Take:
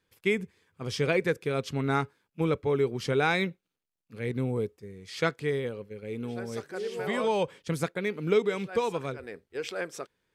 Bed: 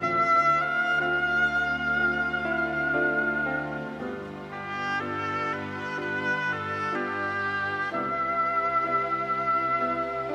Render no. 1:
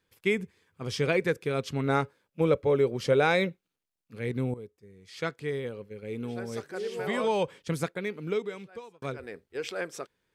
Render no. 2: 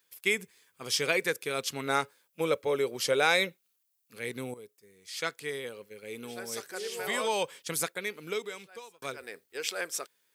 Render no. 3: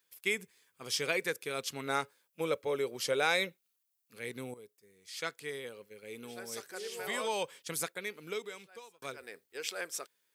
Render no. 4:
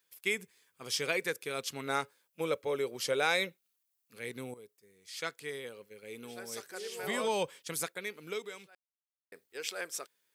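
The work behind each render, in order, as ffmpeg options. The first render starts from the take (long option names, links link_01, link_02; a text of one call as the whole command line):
ffmpeg -i in.wav -filter_complex "[0:a]asettb=1/sr,asplit=3[link_01][link_02][link_03];[link_01]atrim=end=1.874[link_04];[link_02]atrim=start=1.87:end=3.49,asetpts=PTS-STARTPTS,afade=type=in:duration=0.004:curve=qsin,afade=type=out:start_time=1.616:duration=0.004:curve=qsin,equalizer=frequency=550:width=4:gain=10.5[link_05];[link_03]atrim=start=3.486[link_06];[link_04][link_05]acrossfade=duration=0.004:curve1=hsin:curve2=qsin[link_07];[link_07][link_06]acrossfade=duration=0.004:curve1=qsin:curve2=hsin,asplit=3[link_08][link_09][link_10];[link_08]atrim=end=4.54,asetpts=PTS-STARTPTS,afade=type=out:start_time=4.536:duration=0.004:curve=hsin:silence=0.188365[link_11];[link_09]atrim=start=4.54:end=9.02,asetpts=PTS-STARTPTS,afade=type=in:duration=1.55:silence=0.188365,afade=type=out:start_time=3.17:duration=1.31[link_12];[link_10]atrim=start=9.02,asetpts=PTS-STARTPTS,afade=type=in:duration=0.004:curve=hsin[link_13];[link_11][link_12][link_13]concat=n=3:v=0:a=1" out.wav
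ffmpeg -i in.wav -af "highpass=frequency=620:poles=1,aemphasis=mode=production:type=75kf" out.wav
ffmpeg -i in.wav -af "volume=-4.5dB" out.wav
ffmpeg -i in.wav -filter_complex "[0:a]asettb=1/sr,asplit=3[link_01][link_02][link_03];[link_01]atrim=end=7.034[link_04];[link_02]atrim=start=7.03:end=7.5,asetpts=PTS-STARTPTS,afade=type=in:duration=0.004:curve=qsin,afade=type=out:start_time=0.466:duration=0.004:curve=qsin,lowshelf=frequency=340:gain=10[link_05];[link_03]atrim=start=7.496[link_06];[link_04][link_05]acrossfade=duration=0.004:curve1=hsin:curve2=qsin[link_07];[link_07][link_06]acrossfade=duration=0.004:curve1=qsin:curve2=hsin,asplit=3[link_08][link_09][link_10];[link_08]atrim=end=8.75,asetpts=PTS-STARTPTS,afade=type=out:start_time=8.746:duration=0.004:curve=hsin[link_11];[link_09]atrim=start=8.75:end=9.32,asetpts=PTS-STARTPTS,volume=0[link_12];[link_10]atrim=start=9.32,asetpts=PTS-STARTPTS,afade=type=in:duration=0.004:curve=hsin[link_13];[link_11][link_12][link_13]concat=n=3:v=0:a=1" out.wav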